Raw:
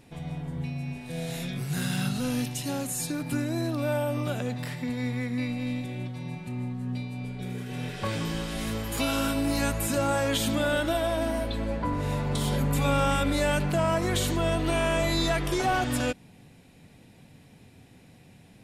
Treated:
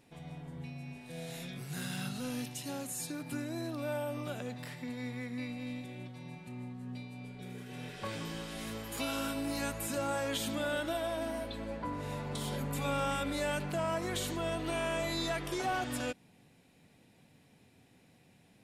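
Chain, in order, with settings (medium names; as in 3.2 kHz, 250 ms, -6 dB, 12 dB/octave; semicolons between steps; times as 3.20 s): bass shelf 120 Hz -9.5 dB; trim -7.5 dB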